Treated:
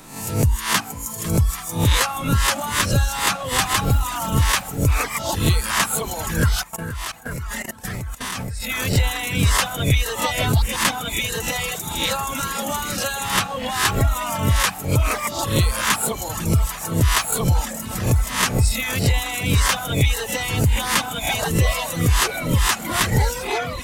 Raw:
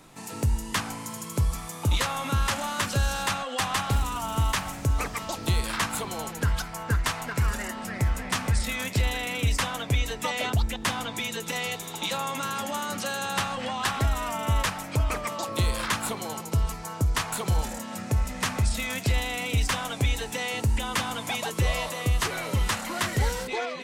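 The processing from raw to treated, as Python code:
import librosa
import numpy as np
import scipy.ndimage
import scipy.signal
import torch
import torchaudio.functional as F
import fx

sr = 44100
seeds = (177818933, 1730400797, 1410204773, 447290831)

p1 = fx.spec_swells(x, sr, rise_s=0.56)
p2 = fx.high_shelf(p1, sr, hz=11000.0, db=8.0)
p3 = p2 + fx.echo_swing(p2, sr, ms=834, ratio=1.5, feedback_pct=73, wet_db=-16.0, dry=0)
p4 = fx.dereverb_blind(p3, sr, rt60_s=1.4)
p5 = fx.level_steps(p4, sr, step_db=17, at=(6.63, 8.7))
y = F.gain(torch.from_numpy(p5), 6.0).numpy()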